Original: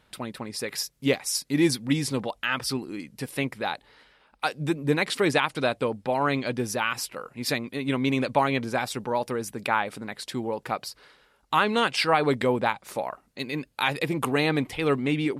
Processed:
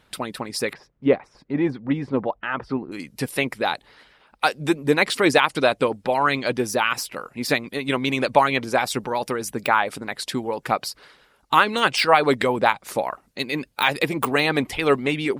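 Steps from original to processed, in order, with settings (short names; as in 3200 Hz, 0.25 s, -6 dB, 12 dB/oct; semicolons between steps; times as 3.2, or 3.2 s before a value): de-esser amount 60%; 0.73–2.92 LPF 1300 Hz 12 dB/oct; harmonic-percussive split percussive +9 dB; gain -1.5 dB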